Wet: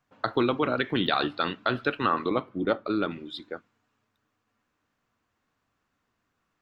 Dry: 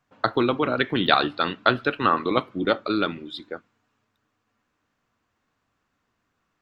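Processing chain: 2.29–3.11 high shelf 2200 Hz -11 dB; limiter -9 dBFS, peak gain reduction 6.5 dB; gain -2.5 dB

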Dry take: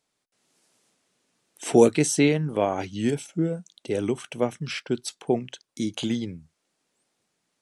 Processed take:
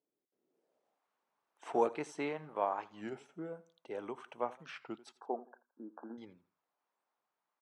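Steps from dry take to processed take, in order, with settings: 1.68–3.03 G.711 law mismatch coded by A; 5.16–6.18 brick-wall FIR band-pass 200–1700 Hz; on a send: feedback echo 84 ms, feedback 31%, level -19 dB; on the sum: band-pass sweep 360 Hz -> 1000 Hz, 0.46–1.13; record warp 33 1/3 rpm, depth 160 cents; gain -2 dB

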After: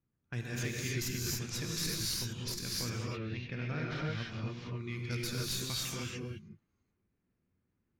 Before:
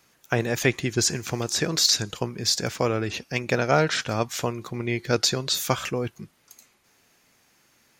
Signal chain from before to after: tracing distortion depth 0.068 ms; low-pass opened by the level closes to 660 Hz, open at -21.5 dBFS; passive tone stack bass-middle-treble 6-0-2; limiter -32 dBFS, peak gain reduction 9.5 dB; 2.86–4.61 air absorption 280 m; non-linear reverb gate 0.32 s rising, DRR -4 dB; gain +3.5 dB

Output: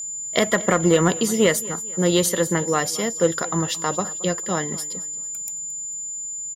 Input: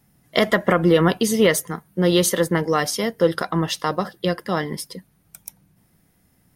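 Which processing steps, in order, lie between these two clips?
feedback echo 0.223 s, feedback 37%, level -19 dB; whine 7100 Hz -26 dBFS; added harmonics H 2 -14 dB, 3 -31 dB, 4 -24 dB, 7 -44 dB, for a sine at -3 dBFS; gain -1 dB

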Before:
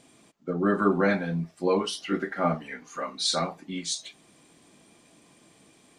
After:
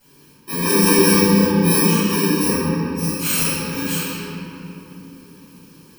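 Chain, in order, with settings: FFT order left unsorted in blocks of 64 samples; 2.45–2.95 LPF 2100 Hz 24 dB/oct; reverb RT60 3.3 s, pre-delay 3 ms, DRR -18.5 dB; gain -9.5 dB

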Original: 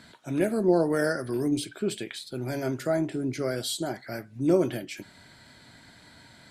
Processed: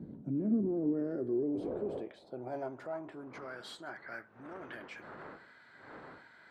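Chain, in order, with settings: one diode to ground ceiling -22.5 dBFS; wind noise 430 Hz -39 dBFS; low shelf 490 Hz +8.5 dB; limiter -20.5 dBFS, peak gain reduction 13 dB; band-pass sweep 210 Hz -> 1500 Hz, 0.27–3.67

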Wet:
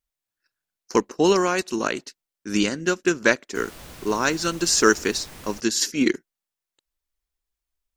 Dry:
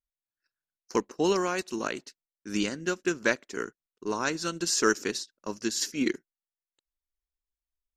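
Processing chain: 3.54–5.59 added noise pink -49 dBFS; gain +7 dB

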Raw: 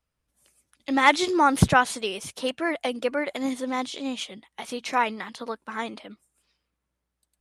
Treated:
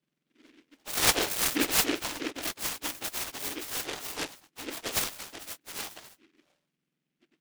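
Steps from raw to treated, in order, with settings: spectrum mirrored in octaves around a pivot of 1700 Hz; noise-modulated delay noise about 2200 Hz, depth 0.27 ms; gain -2 dB

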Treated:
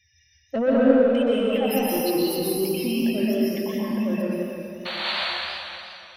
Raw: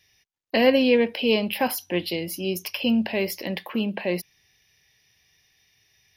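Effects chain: spectral contrast raised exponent 2.7; bell 76 Hz +11.5 dB 0.45 oct; 2.42–3.8 level quantiser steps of 13 dB; 4.85–5.13 painted sound noise 510–4600 Hz -30 dBFS; soft clip -17.5 dBFS, distortion -14 dB; random-step tremolo 1.3 Hz, depth 55%; 0.8–1.26 overdrive pedal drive 15 dB, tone 2200 Hz, clips at -27.5 dBFS; plate-style reverb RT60 2.5 s, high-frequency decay 0.9×, pre-delay 0.11 s, DRR -6.5 dB; warbling echo 0.175 s, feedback 54%, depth 170 cents, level -11 dB

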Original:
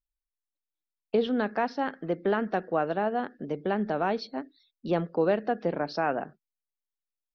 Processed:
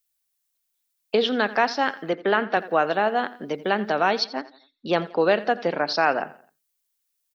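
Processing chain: 2.13–2.57 BPF 140–3800 Hz; 4.24–6.19 low-pass opened by the level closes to 1900 Hz, open at -21.5 dBFS; tilt +3.5 dB/oct; feedback echo 86 ms, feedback 41%, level -18.5 dB; gain +8 dB

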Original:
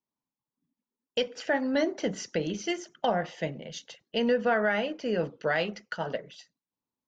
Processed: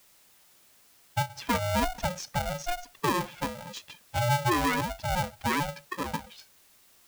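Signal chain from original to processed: spectral contrast raised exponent 2.2; added noise white -60 dBFS; polarity switched at an audio rate 360 Hz

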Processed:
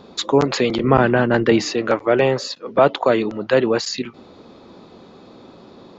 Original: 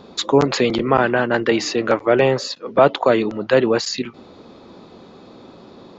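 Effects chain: 0.84–1.62 low shelf 280 Hz +10 dB; gain -1 dB

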